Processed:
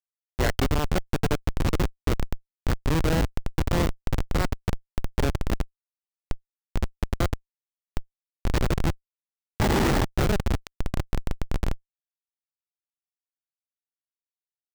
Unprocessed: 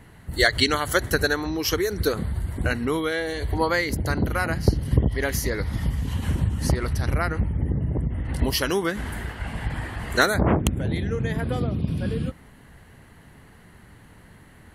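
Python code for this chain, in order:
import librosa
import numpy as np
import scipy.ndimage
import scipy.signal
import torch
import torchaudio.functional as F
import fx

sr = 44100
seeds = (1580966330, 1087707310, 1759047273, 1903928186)

p1 = fx.over_compress(x, sr, threshold_db=-24.0, ratio=-0.5)
p2 = x + (p1 * 10.0 ** (1.0 / 20.0))
p3 = fx.peak_eq(p2, sr, hz=140.0, db=-12.0, octaves=0.61)
p4 = p3 + fx.echo_feedback(p3, sr, ms=508, feedback_pct=53, wet_db=-8, dry=0)
p5 = fx.spec_box(p4, sr, start_s=9.59, length_s=0.46, low_hz=230.0, high_hz=2900.0, gain_db=12)
p6 = scipy.signal.sosfilt(scipy.signal.butter(4, 70.0, 'highpass', fs=sr, output='sos'), p5)
p7 = fx.high_shelf(p6, sr, hz=8600.0, db=-9.5)
p8 = fx.small_body(p7, sr, hz=(830.0, 2000.0), ring_ms=40, db=7)
p9 = fx.schmitt(p8, sr, flips_db=-11.5)
y = np.repeat(scipy.signal.resample_poly(p9, 1, 2), 2)[:len(p9)]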